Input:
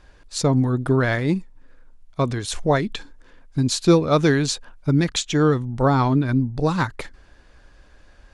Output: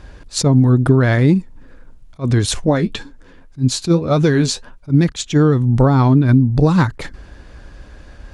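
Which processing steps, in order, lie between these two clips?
0:02.54–0:04.90: flanger 1.8 Hz, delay 6.9 ms, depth 5.4 ms, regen +45%
downward compressor 6 to 1, threshold −23 dBFS, peak gain reduction 11.5 dB
high-pass filter 51 Hz 6 dB per octave
low-shelf EQ 340 Hz +9.5 dB
level that may rise only so fast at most 330 dB per second
level +8.5 dB

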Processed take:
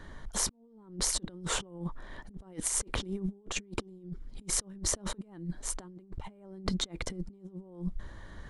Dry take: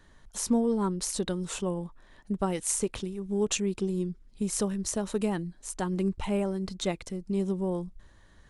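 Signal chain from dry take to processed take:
high-shelf EQ 3,900 Hz −10.5 dB
notch filter 2,600 Hz, Q 10
dynamic equaliser 290 Hz, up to +4 dB, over −40 dBFS, Q 1.9
compressor whose output falls as the input rises −39 dBFS, ratio −0.5
level +2 dB

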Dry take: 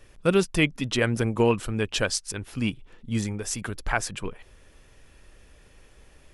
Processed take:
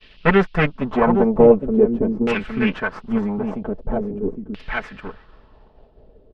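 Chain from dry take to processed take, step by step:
lower of the sound and its delayed copy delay 4.6 ms
single-tap delay 812 ms −6.5 dB
noise in a band 2,700–5,200 Hz −55 dBFS
downward expander −47 dBFS
auto-filter low-pass saw down 0.44 Hz 280–2,600 Hz
level +6 dB

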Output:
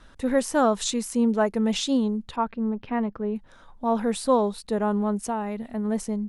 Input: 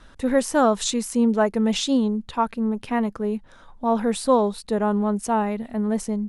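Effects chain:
0:02.36–0:03.36: high-frequency loss of the air 270 metres
0:05.28–0:05.85: downward compressor, threshold −22 dBFS, peak gain reduction 5.5 dB
level −2.5 dB

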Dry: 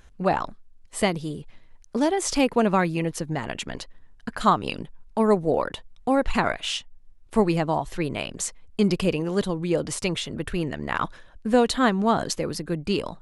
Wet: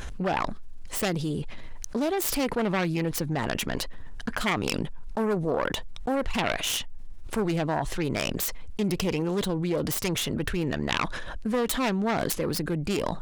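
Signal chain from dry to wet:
phase distortion by the signal itself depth 0.31 ms
envelope flattener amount 70%
level −8 dB

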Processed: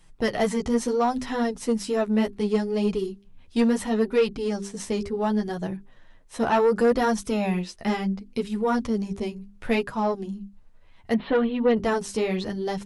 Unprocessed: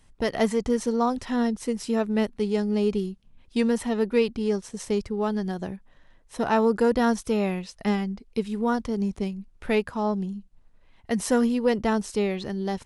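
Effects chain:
mains-hum notches 50/100/150/200/250/300/350/400 Hz
flanger 0.7 Hz, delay 5.5 ms, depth 8.1 ms, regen 0%
0:11.14–0:11.77: Butterworth low-pass 3,900 Hz 72 dB per octave
soft clipping −18.5 dBFS, distortion −17 dB
level +5.5 dB

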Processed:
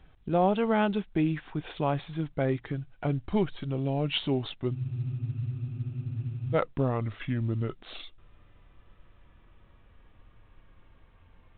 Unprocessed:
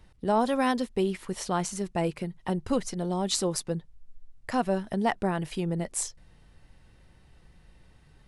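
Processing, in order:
gliding playback speed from 85% → 58%
frozen spectrum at 0:04.75, 1.78 s
mu-law 64 kbit/s 8,000 Hz

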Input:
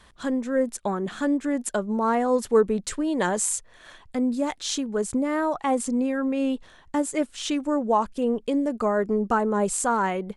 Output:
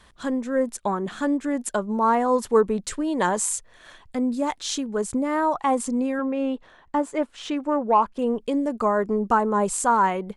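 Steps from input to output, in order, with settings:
0:06.19–0:08.19: mid-hump overdrive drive 11 dB, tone 1,000 Hz, clips at −10.5 dBFS
dynamic equaliser 1,000 Hz, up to +7 dB, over −41 dBFS, Q 2.7

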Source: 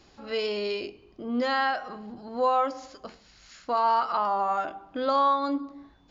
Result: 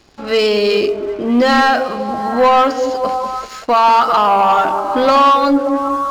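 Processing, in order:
echo through a band-pass that steps 193 ms, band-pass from 270 Hz, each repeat 0.7 octaves, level −4 dB
leveller curve on the samples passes 2
level +8.5 dB

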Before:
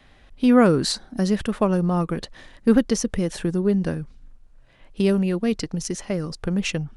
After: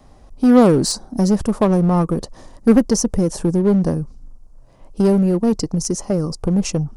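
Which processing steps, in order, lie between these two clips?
flat-topped bell 2,400 Hz −15 dB
in parallel at −8.5 dB: wave folding −21 dBFS
on the sum: level +4.5 dB

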